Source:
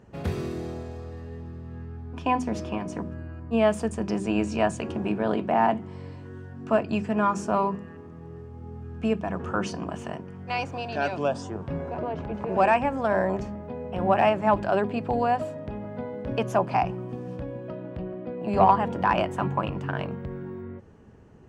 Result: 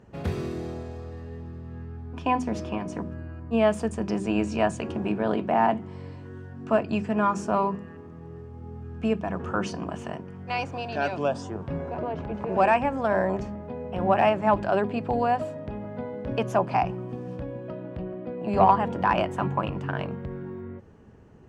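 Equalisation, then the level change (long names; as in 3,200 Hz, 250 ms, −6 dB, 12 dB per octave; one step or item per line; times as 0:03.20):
high-shelf EQ 8,500 Hz −4 dB
0.0 dB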